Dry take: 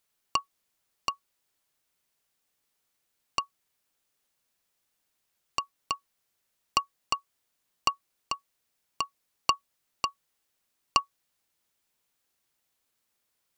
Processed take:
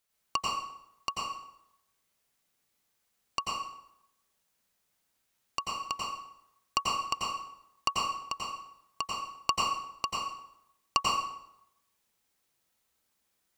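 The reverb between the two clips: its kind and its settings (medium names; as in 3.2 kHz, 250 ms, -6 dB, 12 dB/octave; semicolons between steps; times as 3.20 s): plate-style reverb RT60 0.8 s, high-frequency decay 0.75×, pre-delay 80 ms, DRR -3.5 dB; trim -3.5 dB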